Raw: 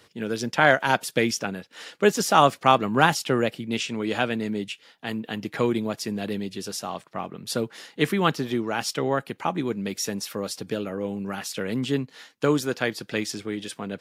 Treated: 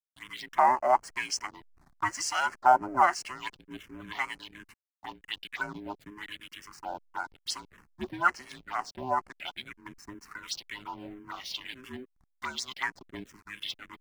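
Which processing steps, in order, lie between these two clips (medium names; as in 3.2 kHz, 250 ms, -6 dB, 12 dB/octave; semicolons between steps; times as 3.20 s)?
every band turned upside down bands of 500 Hz; overdrive pedal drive 10 dB, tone 4.3 kHz, clips at -2.5 dBFS; dynamic bell 2.5 kHz, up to -5 dB, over -43 dBFS, Q 5.3; LFO band-pass sine 0.97 Hz 580–3000 Hz; tone controls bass +7 dB, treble +14 dB; hysteresis with a dead band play -38.5 dBFS; companded quantiser 8-bit; touch-sensitive phaser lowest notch 380 Hz, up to 3.6 kHz, full sweep at -27.5 dBFS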